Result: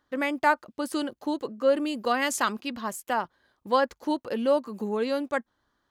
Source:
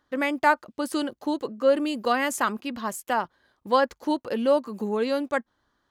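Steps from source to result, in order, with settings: 2.21–2.73 s: dynamic bell 4.5 kHz, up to +8 dB, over -45 dBFS, Q 0.89; trim -2 dB

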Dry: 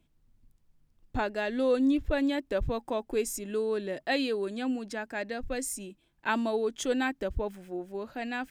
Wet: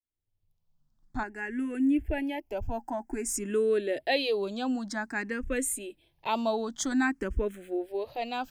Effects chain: fade-in on the opening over 2.33 s; in parallel at -1 dB: peak limiter -23 dBFS, peak gain reduction 8.5 dB; 1.23–3.29 s: on the sum: static phaser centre 780 Hz, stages 8; barber-pole phaser +0.52 Hz

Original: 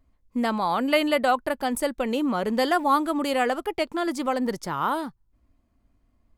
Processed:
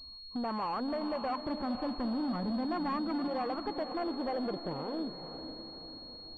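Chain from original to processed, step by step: 1.46–3.28 s: resonant low shelf 330 Hz +10.5 dB, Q 1.5; compression 3:1, threshold -38 dBFS, peak gain reduction 19 dB; low-pass sweep 1.1 kHz -> 180 Hz, 3.69–6.25 s; saturation -35 dBFS, distortion -10 dB; echo that smears into a reverb 515 ms, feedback 49%, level -9 dB; class-D stage that switches slowly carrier 4.3 kHz; trim +4 dB

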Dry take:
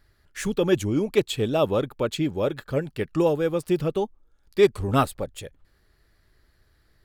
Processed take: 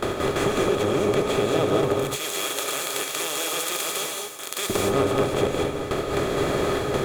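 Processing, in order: spectral levelling over time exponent 0.2; gate with hold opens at -11 dBFS; 1.95–4.70 s: differentiator; compression 4:1, threshold -29 dBFS, peak gain reduction 17 dB; gated-style reverb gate 250 ms rising, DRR 0 dB; trim +4 dB

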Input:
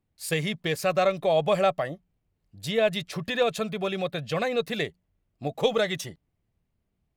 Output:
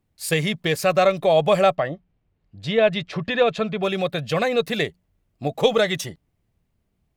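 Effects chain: 1.75–3.83 s: low-pass 3.6 kHz 12 dB/octave; trim +5.5 dB

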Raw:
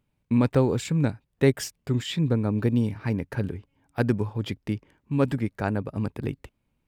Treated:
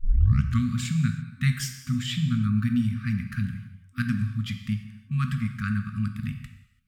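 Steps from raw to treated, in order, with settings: tape start-up on the opening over 0.66 s; gated-style reverb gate 360 ms falling, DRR 6 dB; FFT band-reject 250–1100 Hz

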